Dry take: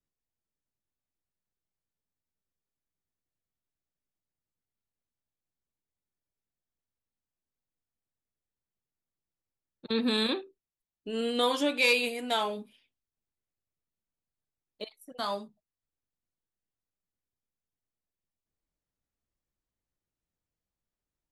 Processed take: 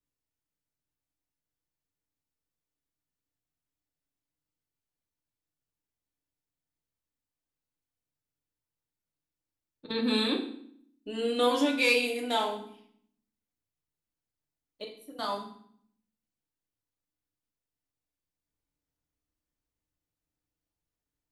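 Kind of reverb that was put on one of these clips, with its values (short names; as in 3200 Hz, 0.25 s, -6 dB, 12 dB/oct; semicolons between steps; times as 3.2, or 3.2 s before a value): FDN reverb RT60 0.63 s, low-frequency decay 1.5×, high-frequency decay 0.9×, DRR 1.5 dB; gain -2.5 dB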